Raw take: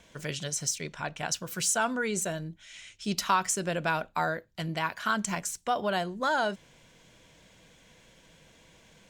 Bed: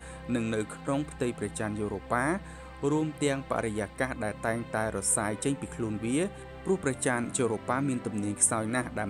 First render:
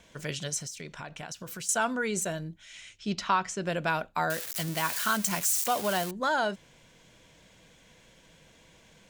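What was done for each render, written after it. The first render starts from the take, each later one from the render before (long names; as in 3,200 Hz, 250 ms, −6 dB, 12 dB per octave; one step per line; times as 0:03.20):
0:00.58–0:01.69: downward compressor, threshold −36 dBFS
0:02.99–0:03.66: high-frequency loss of the air 110 metres
0:04.30–0:06.11: spike at every zero crossing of −23 dBFS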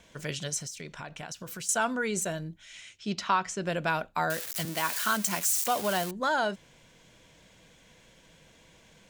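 0:02.81–0:03.47: high-pass filter 110 Hz 6 dB per octave
0:04.65–0:05.53: high-pass filter 180 Hz 24 dB per octave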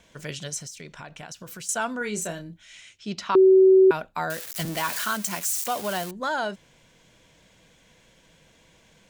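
0:01.98–0:02.75: double-tracking delay 29 ms −7.5 dB
0:03.35–0:03.91: beep over 379 Hz −11 dBFS
0:04.59–0:05.05: power curve on the samples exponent 0.7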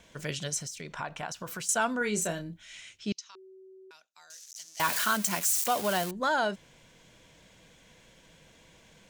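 0:00.90–0:01.65: parametric band 990 Hz +8 dB 1.5 octaves
0:03.12–0:04.80: resonant band-pass 6,100 Hz, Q 4.6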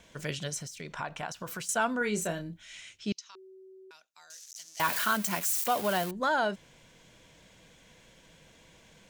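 dynamic equaliser 6,900 Hz, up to −5 dB, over −43 dBFS, Q 0.76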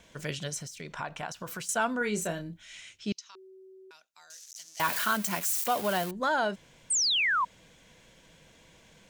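0:06.90–0:07.45: sound drawn into the spectrogram fall 940–9,000 Hz −26 dBFS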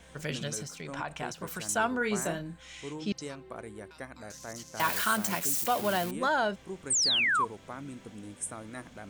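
mix in bed −13 dB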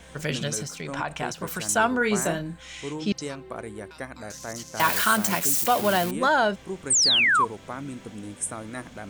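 level +6.5 dB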